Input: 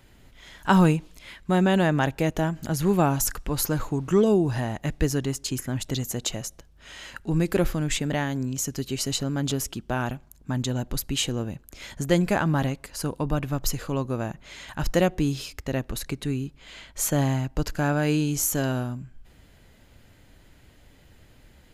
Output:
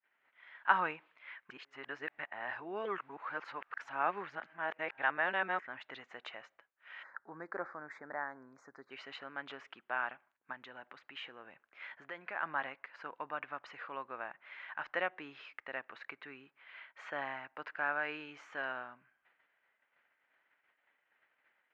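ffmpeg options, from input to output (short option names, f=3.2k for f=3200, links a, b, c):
-filter_complex "[0:a]asplit=3[a][b][c];[a]afade=t=out:st=7.02:d=0.02[d];[b]asuperstop=centerf=2900:order=4:qfactor=0.72,afade=t=in:st=7.02:d=0.02,afade=t=out:st=8.9:d=0.02[e];[c]afade=t=in:st=8.9:d=0.02[f];[d][e][f]amix=inputs=3:normalize=0,asettb=1/sr,asplit=3[g][h][i];[g]atrim=end=10.524[j];[h]atrim=start=10.52:end=12.43,asetpts=PTS-STARTPTS,afade=t=in:d=0.004:c=qsin,afade=t=out:st=1.906:d=0.004:c=qsin,acompressor=threshold=-27dB:ratio=3:attack=3.2:release=140:knee=1:detection=peak[k];[i]atrim=start=12.426[l];[j][k]acrossfade=d=0.004:c1=hsin:c2=qsin[m];[m][l]acrossfade=d=0.004:c1=qsin:c2=hsin,asplit=3[n][o][p];[n]atrim=end=1.502[q];[o]atrim=start=1.498:end=5.592,asetpts=PTS-STARTPTS,areverse[r];[p]atrim=start=5.588[s];[q][r]acrossfade=d=0.004:c1=hsin:c2=hsin[t];[t][s]acrossfade=d=0.004:c1=hsin:c2=hsin,lowpass=f=2.1k:w=0.5412,lowpass=f=2.1k:w=1.3066,agate=range=-33dB:threshold=-46dB:ratio=3:detection=peak,highpass=1.3k"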